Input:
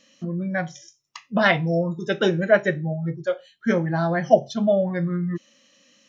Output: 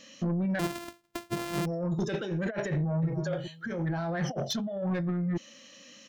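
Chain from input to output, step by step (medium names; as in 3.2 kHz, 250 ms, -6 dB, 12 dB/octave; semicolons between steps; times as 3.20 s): 0.59–1.66 s: sorted samples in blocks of 128 samples; compressor with a negative ratio -29 dBFS, ratio -1; saturation -24 dBFS, distortion -15 dB; 2.75–3.20 s: echo throw 270 ms, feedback 15%, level -7 dB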